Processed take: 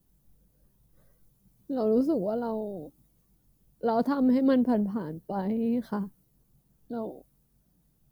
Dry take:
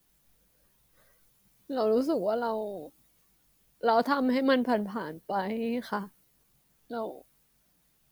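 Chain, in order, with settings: FFT filter 160 Hz 0 dB, 2.2 kHz -20 dB, 15 kHz -12 dB; trim +8 dB

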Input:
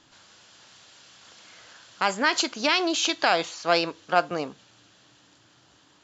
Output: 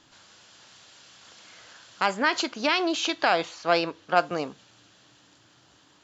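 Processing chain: 2.06–4.17 s: treble shelf 5.8 kHz -11.5 dB

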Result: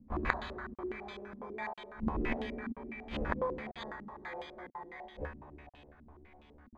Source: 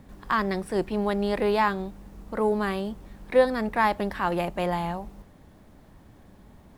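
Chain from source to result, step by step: gate -44 dBFS, range -23 dB; peaking EQ 150 Hz -9 dB 0.74 oct; in parallel at +0.5 dB: compression 5:1, threshold -40 dBFS, peak gain reduction 22.5 dB; on the sum: sample-and-hold 16×; feedback comb 73 Hz, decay 0.42 s, harmonics all, mix 100%; inverted gate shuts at -41 dBFS, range -31 dB; on a send at -4.5 dB: reverberation RT60 3.8 s, pre-delay 4 ms; on the sum: crackling interface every 0.99 s, samples 2048, zero, from 0.74 s; step-sequenced low-pass 12 Hz 240–3200 Hz; trim +18 dB

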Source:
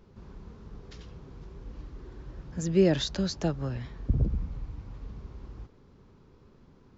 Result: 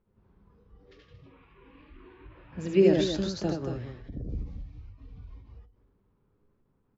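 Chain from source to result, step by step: dynamic bell 360 Hz, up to +6 dB, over -44 dBFS, Q 1.3; level-controlled noise filter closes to 2.3 kHz, open at -22.5 dBFS; 1.25–2.80 s: fifteen-band graphic EQ 1 kHz +5 dB, 2.5 kHz +12 dB, 6.3 kHz -8 dB; 3.69–4.29 s: compression 5:1, threshold -30 dBFS, peak gain reduction 11 dB; 4.80–5.33 s: echo throw 280 ms, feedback 45%, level -5.5 dB; loudspeakers at several distances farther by 26 m -2 dB, 79 m -8 dB; flange 0.3 Hz, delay 9.5 ms, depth 1.6 ms, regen +74%; spectral noise reduction 12 dB; endings held to a fixed fall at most 120 dB/s

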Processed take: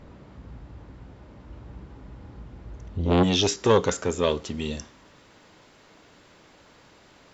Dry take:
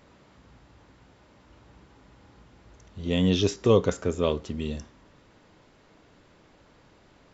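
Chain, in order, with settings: tilt EQ -2.5 dB/octave, from 3.22 s +1.5 dB/octave; transformer saturation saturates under 700 Hz; trim +4.5 dB

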